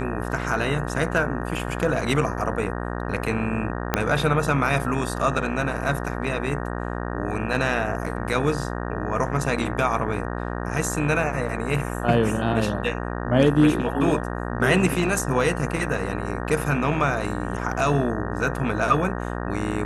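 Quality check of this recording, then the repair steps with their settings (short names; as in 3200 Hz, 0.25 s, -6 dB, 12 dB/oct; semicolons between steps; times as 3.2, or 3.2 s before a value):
buzz 60 Hz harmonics 31 -29 dBFS
3.94 pop -4 dBFS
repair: de-click; de-hum 60 Hz, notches 31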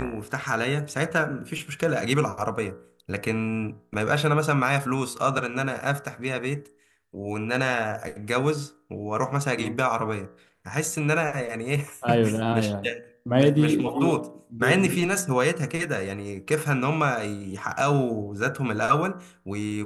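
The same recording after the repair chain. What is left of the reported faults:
3.94 pop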